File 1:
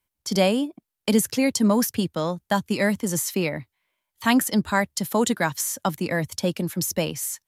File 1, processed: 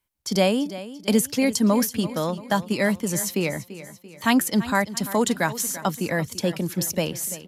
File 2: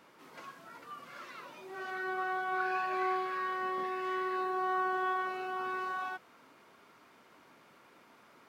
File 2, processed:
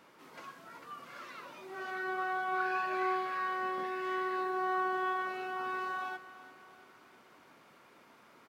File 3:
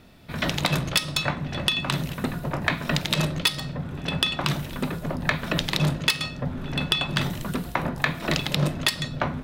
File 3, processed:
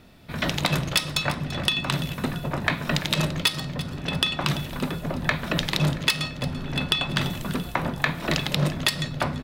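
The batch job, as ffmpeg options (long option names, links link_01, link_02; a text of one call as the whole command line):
ffmpeg -i in.wav -af "aecho=1:1:339|678|1017|1356|1695:0.178|0.0871|0.0427|0.0209|0.0103" out.wav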